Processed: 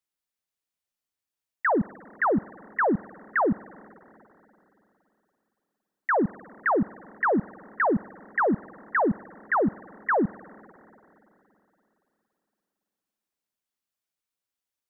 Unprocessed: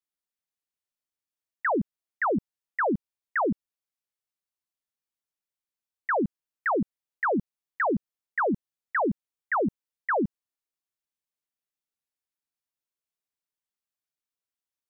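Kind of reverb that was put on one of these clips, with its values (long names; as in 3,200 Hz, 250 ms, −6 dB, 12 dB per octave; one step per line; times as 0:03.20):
spring reverb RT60 3.3 s, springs 46/56 ms, chirp 25 ms, DRR 20 dB
level +2.5 dB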